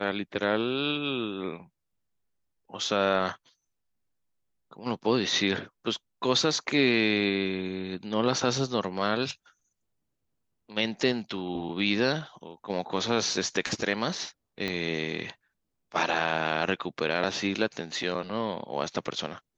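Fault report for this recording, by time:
14.68 pop -17 dBFS

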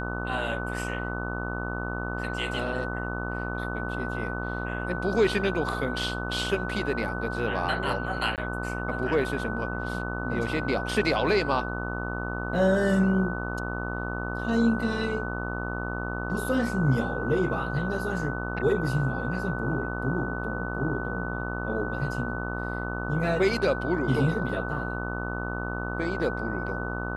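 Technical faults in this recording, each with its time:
buzz 60 Hz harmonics 24 -33 dBFS
tone 1500 Hz -34 dBFS
8.36–8.38 gap 18 ms

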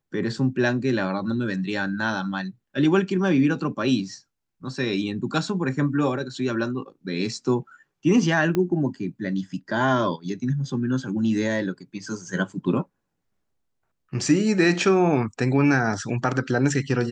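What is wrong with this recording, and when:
8.55 pop -12 dBFS

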